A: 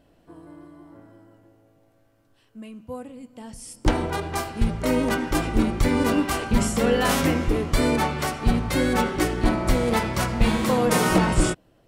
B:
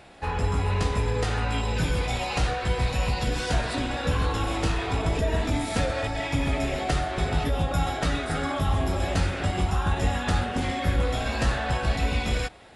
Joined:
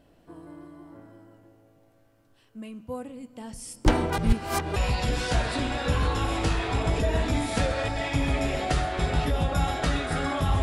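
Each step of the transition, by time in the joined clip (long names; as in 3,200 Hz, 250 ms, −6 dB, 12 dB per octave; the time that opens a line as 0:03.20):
A
0:04.18–0:04.76: reverse
0:04.76: continue with B from 0:02.95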